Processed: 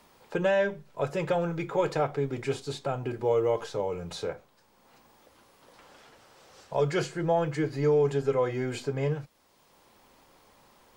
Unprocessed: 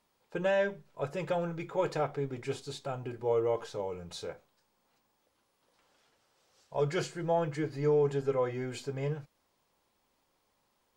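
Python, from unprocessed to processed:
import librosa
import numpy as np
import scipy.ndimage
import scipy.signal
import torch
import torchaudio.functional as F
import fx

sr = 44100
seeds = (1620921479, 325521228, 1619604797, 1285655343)

y = fx.band_squash(x, sr, depth_pct=40)
y = y * librosa.db_to_amplitude(4.5)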